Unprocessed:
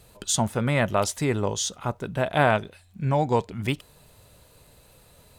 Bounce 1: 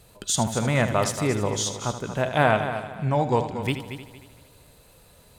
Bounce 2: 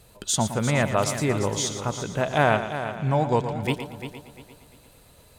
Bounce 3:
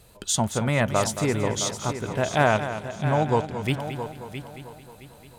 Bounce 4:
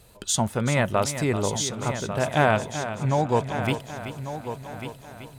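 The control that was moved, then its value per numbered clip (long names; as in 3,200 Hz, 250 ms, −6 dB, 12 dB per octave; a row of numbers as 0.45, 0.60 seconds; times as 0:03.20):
echo machine with several playback heads, delay time: 77, 116, 222, 382 milliseconds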